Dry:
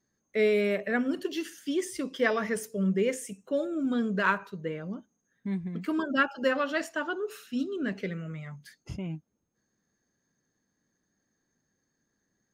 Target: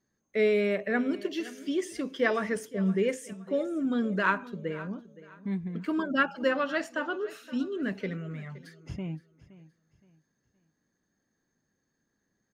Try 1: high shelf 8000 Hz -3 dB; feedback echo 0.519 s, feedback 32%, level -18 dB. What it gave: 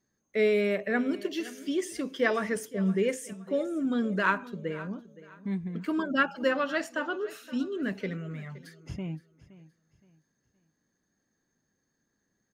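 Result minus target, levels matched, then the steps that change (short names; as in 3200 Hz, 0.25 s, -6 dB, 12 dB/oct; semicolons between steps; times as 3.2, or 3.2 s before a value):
8000 Hz band +3.0 dB
change: high shelf 8000 Hz -10 dB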